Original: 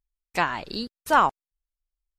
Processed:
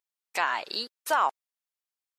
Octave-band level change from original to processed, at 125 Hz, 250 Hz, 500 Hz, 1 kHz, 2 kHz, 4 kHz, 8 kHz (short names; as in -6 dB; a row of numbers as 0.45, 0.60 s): under -20 dB, -14.0 dB, -5.0 dB, -4.5 dB, -3.0 dB, +1.0 dB, +1.5 dB